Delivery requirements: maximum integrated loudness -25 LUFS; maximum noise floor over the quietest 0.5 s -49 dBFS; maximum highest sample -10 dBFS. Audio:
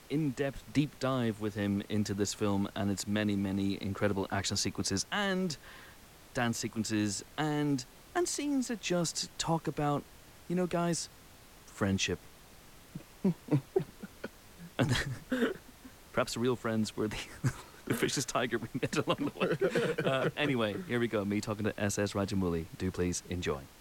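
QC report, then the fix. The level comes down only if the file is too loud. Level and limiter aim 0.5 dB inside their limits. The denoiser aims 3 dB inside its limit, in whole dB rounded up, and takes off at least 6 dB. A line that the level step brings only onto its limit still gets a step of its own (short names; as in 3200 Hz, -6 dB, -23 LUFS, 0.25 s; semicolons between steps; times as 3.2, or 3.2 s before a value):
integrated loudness -33.5 LUFS: OK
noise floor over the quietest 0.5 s -55 dBFS: OK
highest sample -17.0 dBFS: OK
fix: none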